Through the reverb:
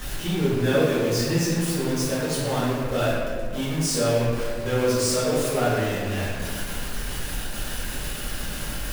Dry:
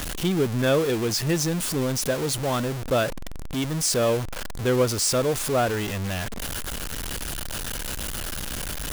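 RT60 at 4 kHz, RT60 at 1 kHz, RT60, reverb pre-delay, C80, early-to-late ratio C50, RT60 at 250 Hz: 1.1 s, 1.5 s, 1.7 s, 4 ms, 0.5 dB, −2.0 dB, 2.3 s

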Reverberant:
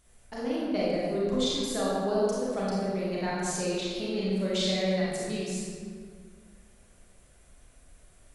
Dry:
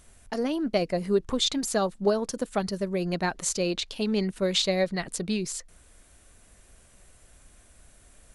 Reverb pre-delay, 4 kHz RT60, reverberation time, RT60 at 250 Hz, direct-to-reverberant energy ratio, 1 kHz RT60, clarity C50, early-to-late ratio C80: 29 ms, 1.1 s, 1.9 s, 2.3 s, −7.0 dB, 1.8 s, −3.0 dB, −0.5 dB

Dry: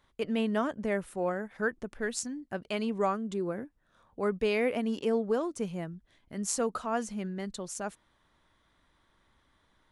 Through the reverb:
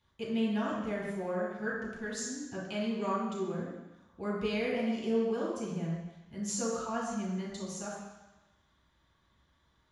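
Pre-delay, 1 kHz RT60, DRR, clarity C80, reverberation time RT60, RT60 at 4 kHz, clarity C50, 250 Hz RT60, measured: 3 ms, 1.1 s, −6.5 dB, 2.5 dB, 1.0 s, 1.2 s, 0.0 dB, 0.90 s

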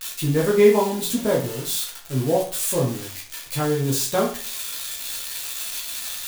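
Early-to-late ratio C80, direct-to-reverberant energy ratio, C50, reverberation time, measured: 11.5 dB, −4.0 dB, 6.5 dB, 0.45 s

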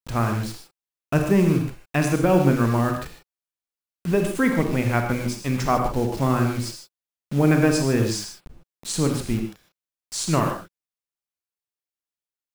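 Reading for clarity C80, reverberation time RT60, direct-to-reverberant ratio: 7.0 dB, non-exponential decay, 3.5 dB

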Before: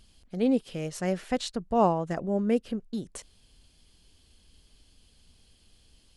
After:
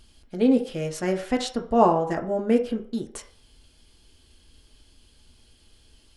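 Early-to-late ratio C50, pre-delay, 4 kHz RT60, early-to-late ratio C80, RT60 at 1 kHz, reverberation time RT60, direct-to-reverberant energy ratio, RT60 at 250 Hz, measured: 11.5 dB, 3 ms, 0.45 s, 15.5 dB, 0.50 s, 0.45 s, 2.0 dB, 0.40 s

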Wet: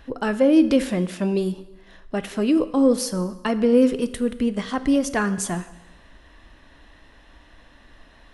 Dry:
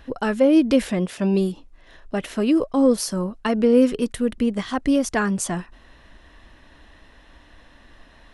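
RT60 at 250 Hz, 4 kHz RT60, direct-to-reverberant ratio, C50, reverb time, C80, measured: 1.0 s, 0.95 s, 12.0 dB, 14.5 dB, 1.0 s, 16.5 dB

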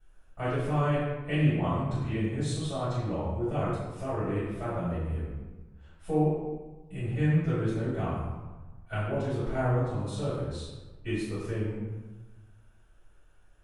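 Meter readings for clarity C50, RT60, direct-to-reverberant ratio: −1.5 dB, 1.2 s, −15.0 dB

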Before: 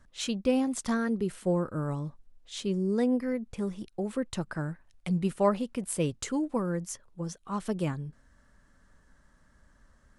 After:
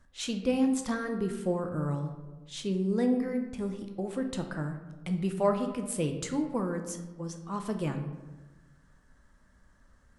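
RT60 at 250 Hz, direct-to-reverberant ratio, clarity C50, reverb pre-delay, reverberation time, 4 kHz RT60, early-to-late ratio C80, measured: 1.4 s, 5.0 dB, 8.0 dB, 14 ms, 1.2 s, 0.60 s, 10.5 dB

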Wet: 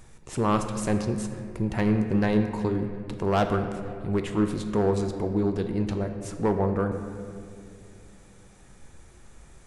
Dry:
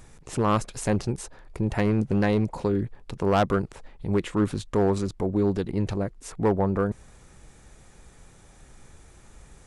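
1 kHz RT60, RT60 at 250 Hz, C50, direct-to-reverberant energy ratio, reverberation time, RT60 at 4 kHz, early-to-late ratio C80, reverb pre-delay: 2.1 s, 3.3 s, 7.0 dB, 5.5 dB, 2.5 s, 1.4 s, 8.5 dB, 5 ms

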